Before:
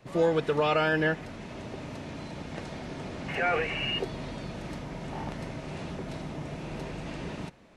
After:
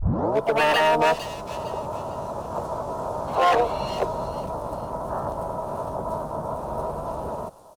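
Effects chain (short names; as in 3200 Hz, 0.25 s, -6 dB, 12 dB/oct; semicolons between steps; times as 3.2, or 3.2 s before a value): tape start at the beginning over 0.41 s; EQ curve 100 Hz 0 dB, 260 Hz -9 dB, 640 Hz +13 dB, 1500 Hz -27 dB, 2500 Hz -16 dB, 4800 Hz -9 dB, 7100 Hz -1 dB; AGC gain up to 4.5 dB; wavefolder -14.5 dBFS; harmoniser -7 st -16 dB, +7 st -1 dB, +12 st -13 dB; thin delay 0.455 s, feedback 34%, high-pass 4500 Hz, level -5 dB; gain -1.5 dB; Opus 48 kbps 48000 Hz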